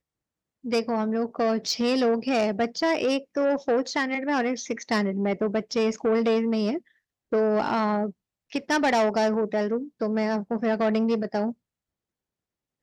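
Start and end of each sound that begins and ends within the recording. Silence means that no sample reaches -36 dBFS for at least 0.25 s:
0.65–6.79 s
7.32–8.10 s
8.52–11.52 s

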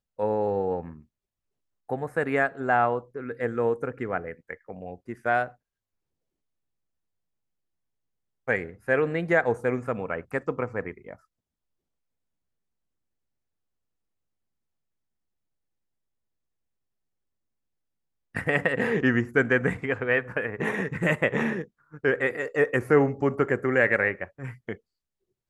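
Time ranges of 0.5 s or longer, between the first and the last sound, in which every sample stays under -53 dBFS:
1.04–1.89 s
5.55–8.48 s
11.16–18.35 s

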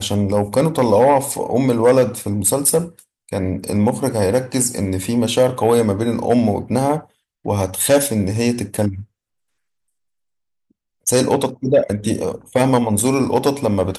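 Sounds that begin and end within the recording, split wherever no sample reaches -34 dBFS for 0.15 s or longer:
3.29–7.02 s
7.45–9.03 s

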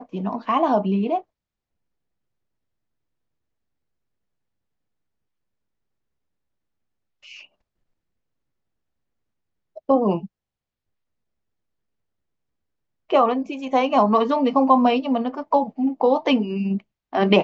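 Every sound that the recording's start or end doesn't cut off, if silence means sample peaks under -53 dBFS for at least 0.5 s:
7.23–7.46 s
9.76–10.27 s

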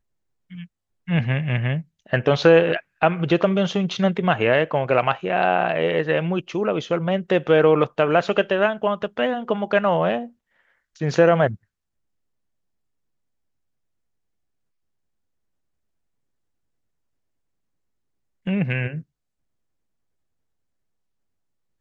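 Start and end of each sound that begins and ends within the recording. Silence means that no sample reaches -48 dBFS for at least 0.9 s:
18.46–19.03 s

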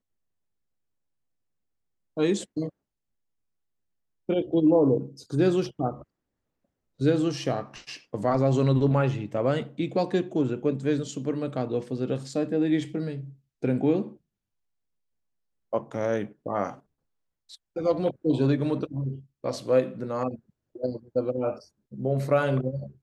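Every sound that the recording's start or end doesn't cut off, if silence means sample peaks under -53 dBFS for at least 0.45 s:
2.17–2.70 s
4.29–6.04 s
6.99–14.17 s
15.73–16.80 s

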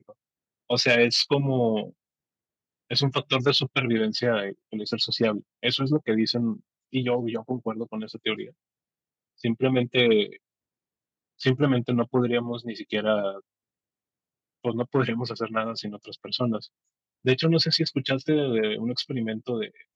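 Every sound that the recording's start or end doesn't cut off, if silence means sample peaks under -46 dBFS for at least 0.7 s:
2.90–8.51 s
9.40–10.36 s
11.40–13.40 s

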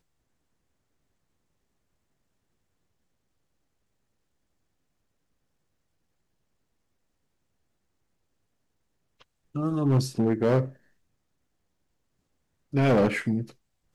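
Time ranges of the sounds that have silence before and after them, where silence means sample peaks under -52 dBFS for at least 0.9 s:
9.20–10.76 s

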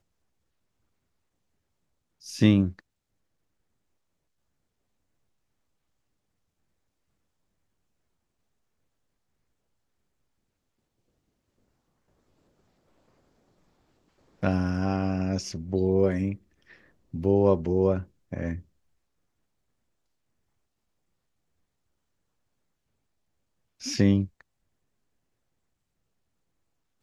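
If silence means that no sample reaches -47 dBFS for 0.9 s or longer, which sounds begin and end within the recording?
2.22–2.79 s
14.42–18.61 s
23.81–24.41 s

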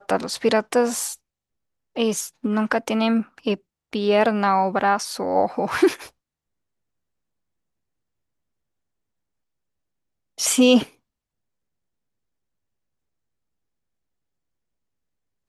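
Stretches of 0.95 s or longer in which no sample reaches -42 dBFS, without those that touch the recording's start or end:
6.09–10.38 s

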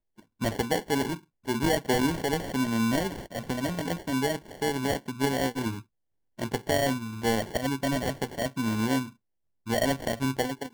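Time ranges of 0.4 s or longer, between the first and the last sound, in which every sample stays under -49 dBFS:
5.82–6.38 s
9.13–9.66 s

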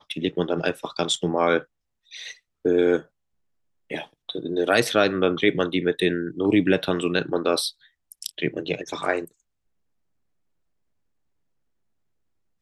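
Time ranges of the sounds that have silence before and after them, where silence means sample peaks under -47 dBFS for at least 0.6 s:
3.90–9.31 s

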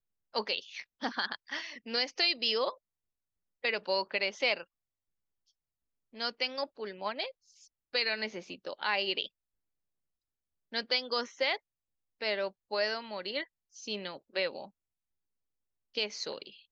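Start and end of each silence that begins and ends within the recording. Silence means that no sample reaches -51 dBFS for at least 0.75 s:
2.75–3.64 s
4.64–6.13 s
9.27–10.72 s
14.68–15.95 s

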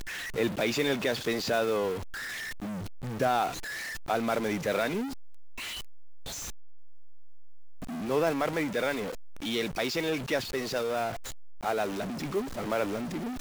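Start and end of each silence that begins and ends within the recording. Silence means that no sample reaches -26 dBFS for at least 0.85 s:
1.92–3.20 s
5.00–8.09 s

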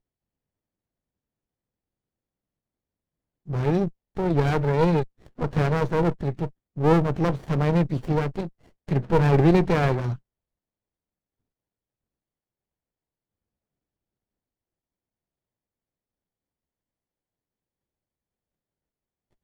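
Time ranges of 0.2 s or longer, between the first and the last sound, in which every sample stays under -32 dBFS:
3.88–4.17 s
5.04–5.39 s
6.48–6.77 s
8.47–8.89 s

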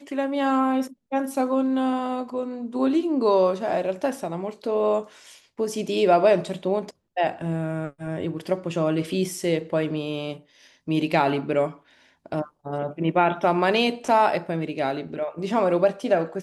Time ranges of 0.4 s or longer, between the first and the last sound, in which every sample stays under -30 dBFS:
5.02–5.59 s
10.33–10.88 s
11.70–12.26 s

